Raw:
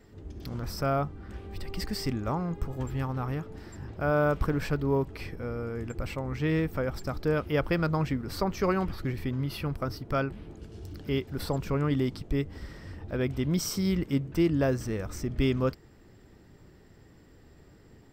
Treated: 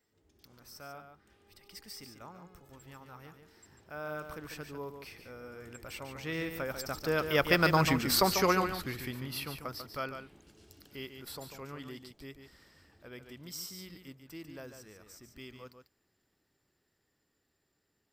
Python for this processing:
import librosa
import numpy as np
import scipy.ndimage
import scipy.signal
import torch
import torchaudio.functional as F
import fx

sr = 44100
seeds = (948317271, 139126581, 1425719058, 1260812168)

y = fx.doppler_pass(x, sr, speed_mps=9, closest_m=3.8, pass_at_s=7.94)
y = fx.tilt_eq(y, sr, slope=3.0)
y = y + 10.0 ** (-8.0 / 20.0) * np.pad(y, (int(144 * sr / 1000.0), 0))[:len(y)]
y = F.gain(torch.from_numpy(y), 6.5).numpy()